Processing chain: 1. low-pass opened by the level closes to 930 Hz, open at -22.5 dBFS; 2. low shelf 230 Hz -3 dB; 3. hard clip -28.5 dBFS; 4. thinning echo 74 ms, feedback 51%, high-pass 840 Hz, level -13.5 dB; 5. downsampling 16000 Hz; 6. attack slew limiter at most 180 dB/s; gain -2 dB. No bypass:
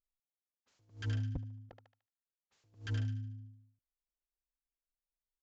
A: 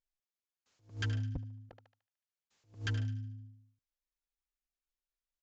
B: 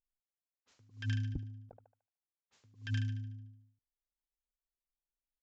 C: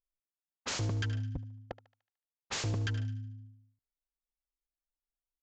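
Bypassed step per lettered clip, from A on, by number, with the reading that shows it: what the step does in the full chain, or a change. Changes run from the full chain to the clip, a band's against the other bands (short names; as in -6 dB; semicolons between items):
1, 2 kHz band +4.5 dB; 3, distortion -7 dB; 6, crest factor change -2.5 dB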